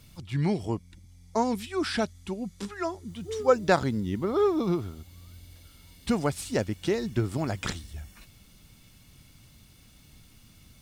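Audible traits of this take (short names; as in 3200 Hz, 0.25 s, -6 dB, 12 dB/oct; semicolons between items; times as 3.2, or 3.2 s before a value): noise floor -56 dBFS; spectral tilt -5.5 dB/oct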